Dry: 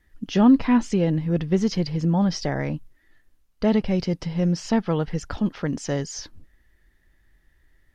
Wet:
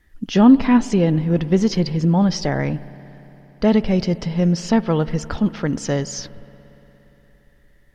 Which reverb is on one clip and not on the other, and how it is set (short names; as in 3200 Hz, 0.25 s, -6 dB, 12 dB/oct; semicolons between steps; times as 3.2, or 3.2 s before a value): spring tank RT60 3.9 s, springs 58 ms, chirp 75 ms, DRR 16.5 dB; gain +4.5 dB